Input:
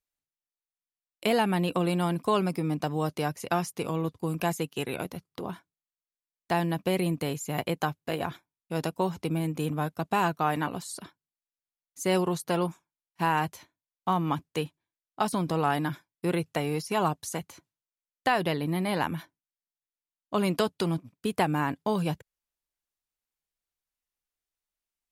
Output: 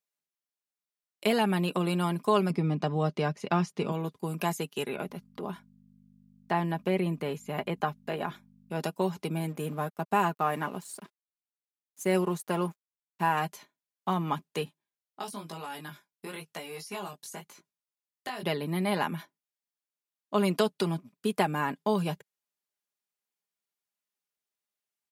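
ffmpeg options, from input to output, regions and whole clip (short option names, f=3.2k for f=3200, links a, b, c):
-filter_complex "[0:a]asettb=1/sr,asplit=3[a][b][c];[a]atrim=end=2.504[d];[b]atrim=start=2.5:end=3.92,asetpts=PTS-STARTPTS,afade=t=in:d=0.004:c=qsin,afade=t=out:st=1.416:d=0.004:c=qsin,lowpass=5k,lowshelf=f=230:g=9.5[e];[c]atrim=start=3.916[f];[d][e]acrossfade=d=0.004:c1=hsin:c2=qsin[g];[g][f]acrossfade=d=0.004:c1=qsin:c2=hsin,asettb=1/sr,asplit=3[h][i][j];[h]atrim=end=4.884[k];[i]atrim=start=4.88:end=8.8,asetpts=PTS-STARTPTS,afade=t=in:d=0.004:c=qsin,afade=t=out:st=3.916:d=0.004:c=qsin,acrossover=split=3000[l][m];[m]acompressor=threshold=-52dB:ratio=4:attack=1:release=60[n];[l][n]amix=inputs=2:normalize=0,aeval=exprs='val(0)+0.00355*(sin(2*PI*50*n/s)+sin(2*PI*2*50*n/s)/2+sin(2*PI*3*50*n/s)/3+sin(2*PI*4*50*n/s)/4+sin(2*PI*5*50*n/s)/5)':c=same[o];[j]atrim=start=8.796[p];[k][o]acrossfade=d=0.004:c1=hsin:c2=qsin[q];[q][p]acrossfade=d=0.004:c1=qsin:c2=hsin,asettb=1/sr,asplit=3[r][s][t];[r]atrim=end=9.484[u];[s]atrim=start=9.48:end=13.37,asetpts=PTS-STARTPTS,afade=t=in:d=0.004:c=qsin,afade=t=out:st=3.886:d=0.004:c=qsin,equalizer=f=4.3k:t=o:w=0.98:g=-7.5,aeval=exprs='sgn(val(0))*max(abs(val(0))-0.00266,0)':c=same[v];[t]atrim=start=13.366[w];[u][v]acrossfade=d=0.004:c1=hsin:c2=qsin[x];[x][w]acrossfade=d=0.004:c1=qsin:c2=hsin,asettb=1/sr,asplit=3[y][z][aa];[y]atrim=end=14.654[ab];[z]atrim=start=14.65:end=18.43,asetpts=PTS-STARTPTS,afade=t=in:d=0.004:c=qsin,afade=t=out:st=3.776:d=0.004:c=qsin,highshelf=f=8.6k:g=3,acrossover=split=650|2500[ac][ad][ae];[ac]acompressor=threshold=-38dB:ratio=4[af];[ad]acompressor=threshold=-38dB:ratio=4[ag];[ae]acompressor=threshold=-38dB:ratio=4[ah];[af][ag][ah]amix=inputs=3:normalize=0,flanger=delay=17.5:depth=4:speed=1[ai];[aa]atrim=start=18.426[aj];[ab][ai]acrossfade=d=0.004:c1=hsin:c2=qsin[ak];[ak][aj]acrossfade=d=0.004:c1=qsin:c2=hsin,highpass=160,aecho=1:1:4.9:0.47,volume=-1.5dB"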